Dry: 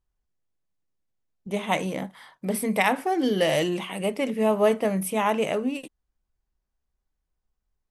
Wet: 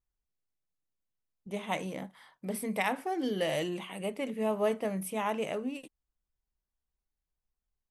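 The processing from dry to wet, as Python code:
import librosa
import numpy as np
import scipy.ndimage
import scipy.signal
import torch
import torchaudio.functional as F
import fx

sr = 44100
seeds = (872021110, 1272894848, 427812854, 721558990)

y = fx.notch(x, sr, hz=5300.0, q=6.1, at=(3.31, 4.42))
y = y * 10.0 ** (-8.5 / 20.0)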